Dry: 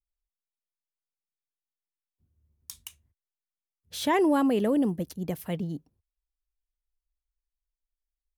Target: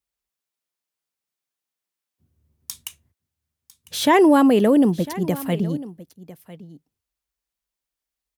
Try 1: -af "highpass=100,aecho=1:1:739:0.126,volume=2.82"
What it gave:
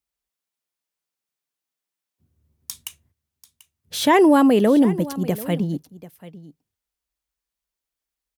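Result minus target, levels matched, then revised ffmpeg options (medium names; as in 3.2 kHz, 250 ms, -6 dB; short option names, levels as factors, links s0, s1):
echo 262 ms early
-af "highpass=100,aecho=1:1:1001:0.126,volume=2.82"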